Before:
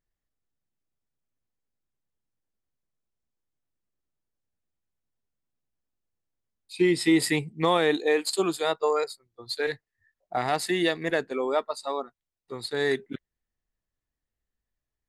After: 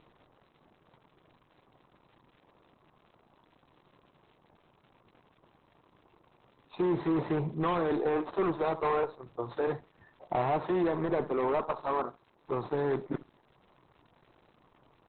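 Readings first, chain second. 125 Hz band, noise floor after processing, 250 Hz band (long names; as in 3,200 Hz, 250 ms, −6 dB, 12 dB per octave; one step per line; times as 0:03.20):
0.0 dB, −68 dBFS, −4.5 dB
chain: compressor on every frequency bin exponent 0.6
octave-band graphic EQ 125/1,000/2,000/4,000/8,000 Hz +6/+10/−9/−11/+9 dB
on a send: repeating echo 69 ms, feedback 22%, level −19 dB
on the sum: hard clipping −19 dBFS, distortion −8 dB
high-shelf EQ 3,500 Hz −11 dB
in parallel at +2 dB: downward compressor 8 to 1, threshold −34 dBFS, peak gain reduction 13 dB
on the sum: surface crackle 140 per second −37 dBFS
level −7 dB
Opus 8 kbit/s 48,000 Hz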